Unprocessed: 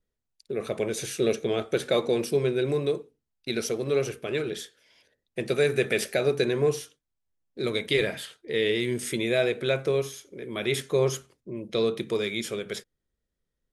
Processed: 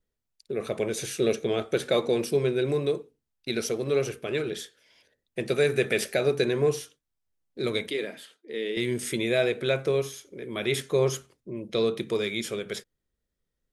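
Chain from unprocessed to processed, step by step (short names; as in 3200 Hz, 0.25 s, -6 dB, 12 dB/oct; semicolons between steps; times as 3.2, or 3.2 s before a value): 7.9–8.77 ladder high-pass 200 Hz, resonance 40%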